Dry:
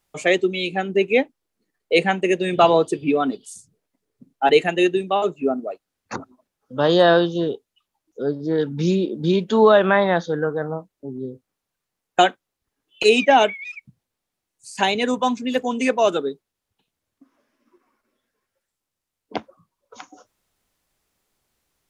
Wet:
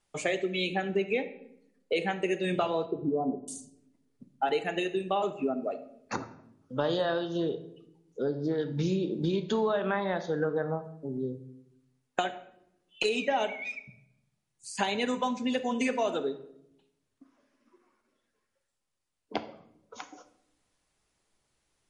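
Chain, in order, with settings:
0:02.85–0:03.48: Butterworth low-pass 1,000 Hz 72 dB per octave
downward compressor 10 to 1, threshold −22 dBFS, peak gain reduction 13 dB
on a send at −9 dB: convolution reverb RT60 0.80 s, pre-delay 5 ms
on the sum: level −3 dB
MP3 48 kbit/s 44,100 Hz

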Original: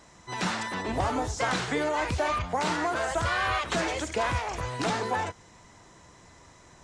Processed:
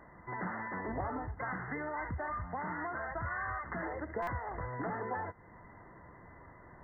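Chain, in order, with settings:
0:01.17–0:03.83: parametric band 480 Hz −8 dB 1.2 octaves
downward compressor 2 to 1, threshold −41 dBFS, peak gain reduction 10 dB
linear-phase brick-wall low-pass 2,100 Hz
buffer that repeats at 0:04.22, samples 256, times 8

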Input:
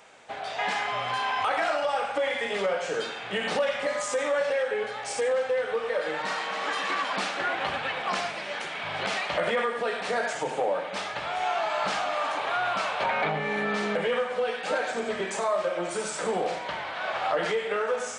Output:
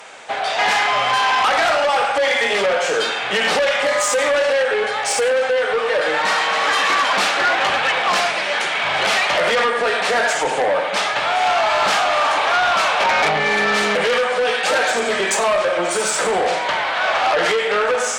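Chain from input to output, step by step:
0:13.24–0:15.35: high-shelf EQ 3,700 Hz +4.5 dB
harmonic generator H 5 −11 dB, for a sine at −15.5 dBFS
low-shelf EQ 300 Hz −11 dB
level +7.5 dB

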